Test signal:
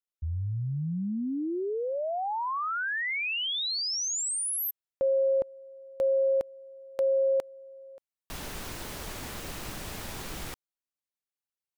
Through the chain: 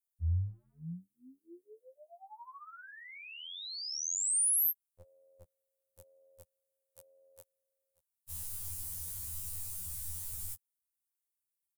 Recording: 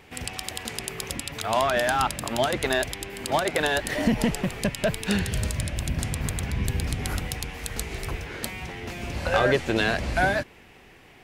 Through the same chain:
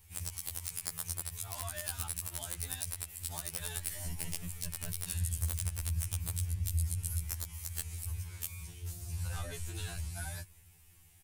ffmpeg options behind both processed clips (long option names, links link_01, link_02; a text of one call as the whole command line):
ffmpeg -i in.wav -filter_complex "[0:a]firequalizer=gain_entry='entry(130,0);entry(220,-29);entry(310,-22);entry(560,-26);entry(890,-18);entry(1700,-19);entry(9100,9)':delay=0.05:min_phase=1,asplit=2[link_01][link_02];[link_02]acompressor=threshold=-34dB:ratio=6:attack=0.26:release=82:knee=6:detection=peak,volume=2dB[link_03];[link_01][link_03]amix=inputs=2:normalize=0,aeval=exprs='(mod(2.51*val(0)+1,2)-1)/2.51':channel_layout=same,afftfilt=real='re*2*eq(mod(b,4),0)':imag='im*2*eq(mod(b,4),0)':win_size=2048:overlap=0.75,volume=-6.5dB" out.wav